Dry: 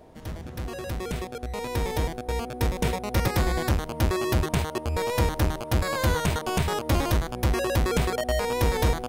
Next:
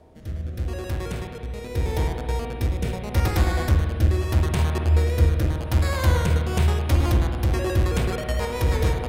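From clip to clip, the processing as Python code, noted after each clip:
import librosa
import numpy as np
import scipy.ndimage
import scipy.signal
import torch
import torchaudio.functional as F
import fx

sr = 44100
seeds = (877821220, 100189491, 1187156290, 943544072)

y = fx.rotary_switch(x, sr, hz=0.8, then_hz=6.7, switch_at_s=6.24)
y = fx.peak_eq(y, sr, hz=77.0, db=9.0, octaves=0.71)
y = fx.rev_spring(y, sr, rt60_s=1.9, pass_ms=(52,), chirp_ms=50, drr_db=3.0)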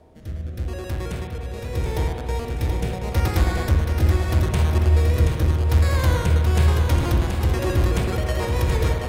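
y = fx.echo_feedback(x, sr, ms=728, feedback_pct=46, wet_db=-6.0)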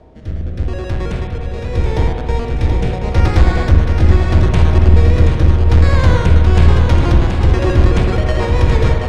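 y = fx.octave_divider(x, sr, octaves=2, level_db=-3.0)
y = np.clip(10.0 ** (9.0 / 20.0) * y, -1.0, 1.0) / 10.0 ** (9.0 / 20.0)
y = fx.air_absorb(y, sr, metres=100.0)
y = F.gain(torch.from_numpy(y), 7.5).numpy()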